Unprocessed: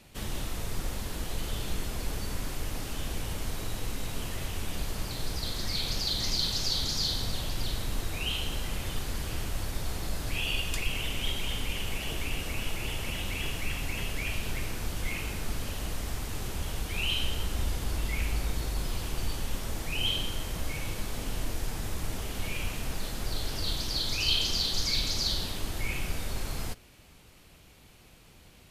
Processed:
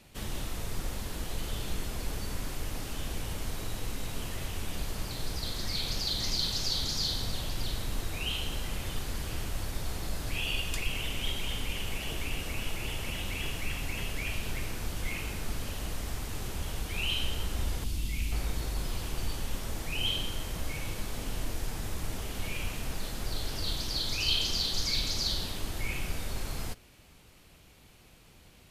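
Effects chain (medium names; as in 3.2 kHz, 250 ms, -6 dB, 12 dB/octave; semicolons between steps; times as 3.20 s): 17.84–18.32 s: high-order bell 880 Hz -11 dB 2.6 oct; trim -1.5 dB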